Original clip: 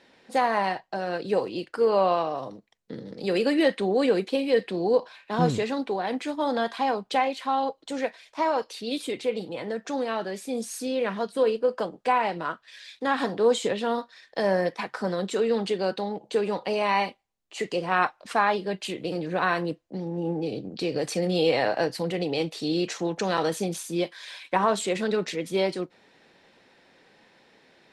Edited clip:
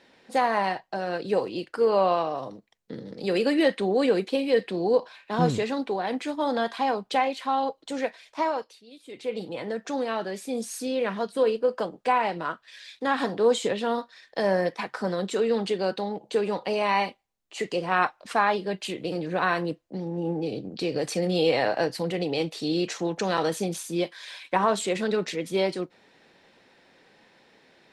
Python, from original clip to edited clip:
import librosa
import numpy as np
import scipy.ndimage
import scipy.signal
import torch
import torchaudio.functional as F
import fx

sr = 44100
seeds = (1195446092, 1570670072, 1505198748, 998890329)

y = fx.edit(x, sr, fx.fade_down_up(start_s=8.4, length_s=1.04, db=-19.0, fade_s=0.4), tone=tone)